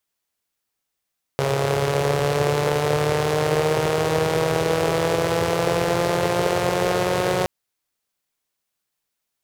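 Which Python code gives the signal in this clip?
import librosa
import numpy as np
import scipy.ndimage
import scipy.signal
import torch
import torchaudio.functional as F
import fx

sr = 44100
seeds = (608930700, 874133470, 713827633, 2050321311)

y = fx.engine_four_rev(sr, seeds[0], length_s=6.07, rpm=4100, resonances_hz=(130.0, 450.0), end_rpm=5500)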